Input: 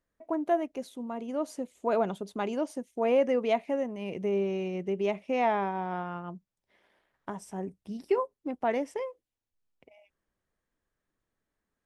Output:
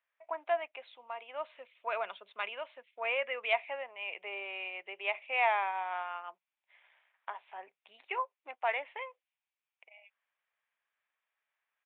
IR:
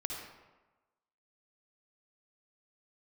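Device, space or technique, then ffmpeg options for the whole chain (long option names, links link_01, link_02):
musical greeting card: -filter_complex "[0:a]aresample=8000,aresample=44100,highpass=frequency=730:width=0.5412,highpass=frequency=730:width=1.3066,equalizer=frequency=2400:width_type=o:width=0.57:gain=9.5,asettb=1/sr,asplit=3[link_01][link_02][link_03];[link_01]atrim=end=1.444[link_04];[link_02]atrim=start=1.44:end=3.53,asetpts=PTS-STARTPTS,afade=type=in:duration=0.004:curve=qsin,afade=type=out:start_time=2.086:duration=0.004:curve=qsin,equalizer=frequency=200:width_type=o:width=0.33:gain=9,equalizer=frequency=315:width_type=o:width=0.33:gain=-5,equalizer=frequency=800:width_type=o:width=0.33:gain=-10[link_05];[link_03]atrim=start=3.526[link_06];[link_04][link_05]acrossfade=duration=0.004:curve1=hsin:curve2=qsin[link_07];[link_07][link_06]acrossfade=duration=0.004:curve1=qsin:curve2=hsin"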